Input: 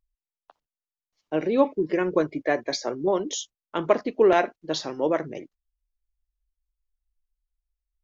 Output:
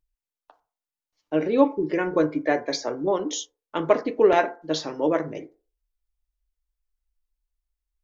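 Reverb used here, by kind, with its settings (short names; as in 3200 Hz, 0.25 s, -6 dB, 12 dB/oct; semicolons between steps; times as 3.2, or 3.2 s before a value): FDN reverb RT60 0.37 s, low-frequency decay 0.7×, high-frequency decay 0.35×, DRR 7 dB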